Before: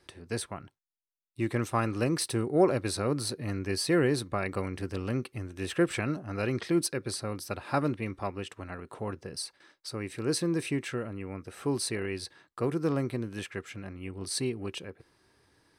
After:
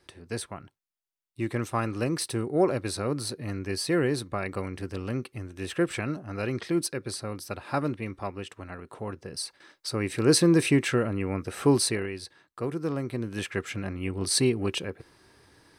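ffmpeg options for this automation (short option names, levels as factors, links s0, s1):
-af "volume=8.41,afade=t=in:st=9.19:d=1.15:silence=0.354813,afade=t=out:st=11.7:d=0.42:silence=0.298538,afade=t=in:st=13.04:d=0.65:silence=0.334965"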